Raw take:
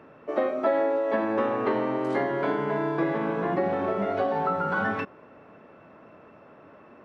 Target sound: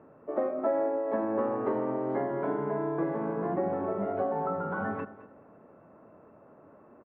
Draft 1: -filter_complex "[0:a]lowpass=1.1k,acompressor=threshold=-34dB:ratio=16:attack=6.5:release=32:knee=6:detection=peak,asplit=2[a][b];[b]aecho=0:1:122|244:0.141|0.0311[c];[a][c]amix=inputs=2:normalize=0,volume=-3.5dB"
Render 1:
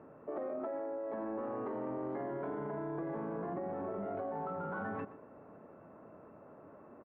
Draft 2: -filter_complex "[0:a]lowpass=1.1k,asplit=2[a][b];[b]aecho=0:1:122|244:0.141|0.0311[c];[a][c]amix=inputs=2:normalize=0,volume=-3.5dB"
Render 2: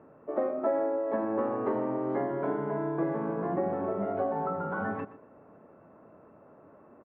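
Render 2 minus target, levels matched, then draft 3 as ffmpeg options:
echo 92 ms early
-filter_complex "[0:a]lowpass=1.1k,asplit=2[a][b];[b]aecho=0:1:214|428:0.141|0.0311[c];[a][c]amix=inputs=2:normalize=0,volume=-3.5dB"

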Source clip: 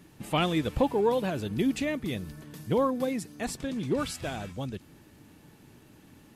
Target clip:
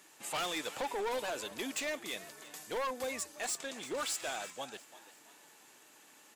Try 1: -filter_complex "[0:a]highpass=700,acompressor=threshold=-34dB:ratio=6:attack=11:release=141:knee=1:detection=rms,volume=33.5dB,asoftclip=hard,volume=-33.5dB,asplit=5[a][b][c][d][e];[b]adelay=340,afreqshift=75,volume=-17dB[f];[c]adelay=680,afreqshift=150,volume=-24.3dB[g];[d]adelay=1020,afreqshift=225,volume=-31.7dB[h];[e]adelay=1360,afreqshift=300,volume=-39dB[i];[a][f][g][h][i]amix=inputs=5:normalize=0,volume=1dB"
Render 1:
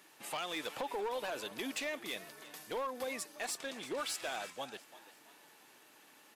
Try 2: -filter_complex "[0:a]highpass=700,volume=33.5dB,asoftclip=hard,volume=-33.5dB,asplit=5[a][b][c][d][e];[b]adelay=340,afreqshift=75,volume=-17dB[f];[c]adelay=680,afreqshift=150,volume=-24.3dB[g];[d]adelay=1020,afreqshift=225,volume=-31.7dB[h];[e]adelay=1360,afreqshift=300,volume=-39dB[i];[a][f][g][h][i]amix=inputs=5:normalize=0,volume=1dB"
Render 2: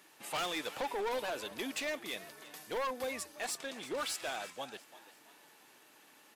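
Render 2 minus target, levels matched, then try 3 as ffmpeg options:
8000 Hz band -3.5 dB
-filter_complex "[0:a]highpass=700,equalizer=f=7.3k:t=o:w=0.52:g=8.5,volume=33.5dB,asoftclip=hard,volume=-33.5dB,asplit=5[a][b][c][d][e];[b]adelay=340,afreqshift=75,volume=-17dB[f];[c]adelay=680,afreqshift=150,volume=-24.3dB[g];[d]adelay=1020,afreqshift=225,volume=-31.7dB[h];[e]adelay=1360,afreqshift=300,volume=-39dB[i];[a][f][g][h][i]amix=inputs=5:normalize=0,volume=1dB"

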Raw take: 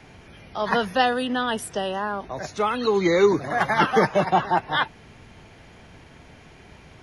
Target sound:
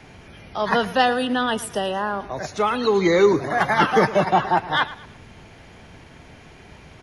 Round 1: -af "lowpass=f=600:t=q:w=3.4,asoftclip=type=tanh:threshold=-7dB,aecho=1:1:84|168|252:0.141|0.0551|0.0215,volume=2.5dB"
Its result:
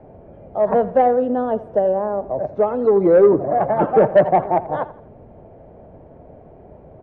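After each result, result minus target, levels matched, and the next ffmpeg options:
echo 28 ms early; 500 Hz band +3.0 dB
-af "lowpass=f=600:t=q:w=3.4,asoftclip=type=tanh:threshold=-7dB,aecho=1:1:112|224|336:0.141|0.0551|0.0215,volume=2.5dB"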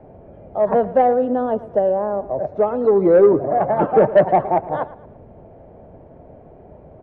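500 Hz band +3.0 dB
-af "asoftclip=type=tanh:threshold=-7dB,aecho=1:1:112|224|336:0.141|0.0551|0.0215,volume=2.5dB"

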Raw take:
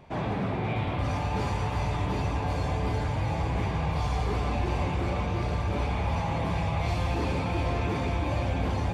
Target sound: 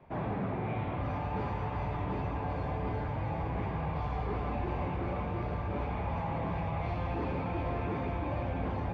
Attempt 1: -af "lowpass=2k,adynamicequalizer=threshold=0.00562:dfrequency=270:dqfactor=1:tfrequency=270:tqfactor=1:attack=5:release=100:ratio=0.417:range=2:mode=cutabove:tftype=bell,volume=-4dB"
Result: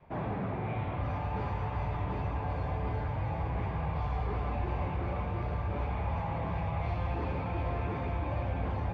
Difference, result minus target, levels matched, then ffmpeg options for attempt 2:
250 Hz band -2.5 dB
-af "lowpass=2k,adynamicequalizer=threshold=0.00562:dfrequency=73:dqfactor=1:tfrequency=73:tqfactor=1:attack=5:release=100:ratio=0.417:range=2:mode=cutabove:tftype=bell,volume=-4dB"

